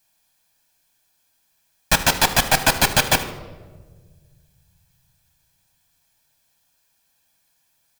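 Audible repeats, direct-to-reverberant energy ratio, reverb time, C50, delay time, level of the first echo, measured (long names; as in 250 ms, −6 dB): 2, 8.5 dB, 1.5 s, 11.5 dB, 76 ms, −16.0 dB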